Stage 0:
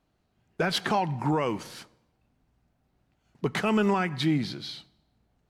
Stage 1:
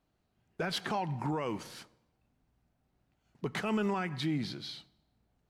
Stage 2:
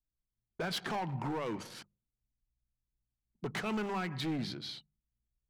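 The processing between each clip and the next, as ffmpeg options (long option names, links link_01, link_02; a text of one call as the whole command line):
ffmpeg -i in.wav -af "alimiter=limit=-19.5dB:level=0:latency=1:release=86,volume=-4.5dB" out.wav
ffmpeg -i in.wav -af "anlmdn=0.00631,volume=31dB,asoftclip=hard,volume=-31dB,bandreject=frequency=50:width_type=h:width=6,bandreject=frequency=100:width_type=h:width=6,bandreject=frequency=150:width_type=h:width=6,bandreject=frequency=200:width_type=h:width=6" out.wav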